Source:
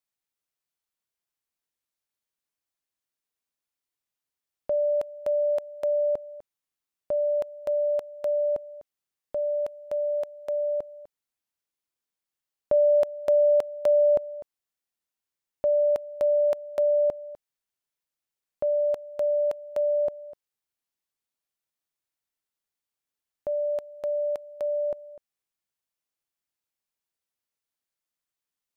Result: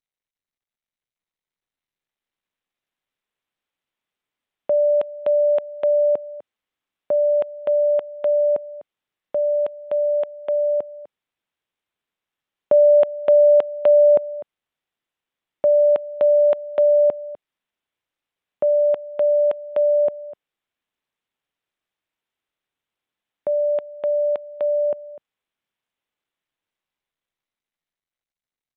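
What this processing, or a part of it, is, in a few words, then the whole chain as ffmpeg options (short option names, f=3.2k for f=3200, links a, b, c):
Bluetooth headset: -af "highpass=150,dynaudnorm=f=530:g=9:m=7dB,aresample=8000,aresample=44100" -ar 32000 -c:a sbc -b:a 64k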